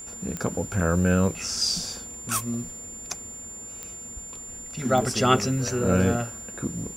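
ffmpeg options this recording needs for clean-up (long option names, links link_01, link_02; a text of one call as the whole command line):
ffmpeg -i in.wav -af "adeclick=threshold=4,bandreject=frequency=7200:width=30" out.wav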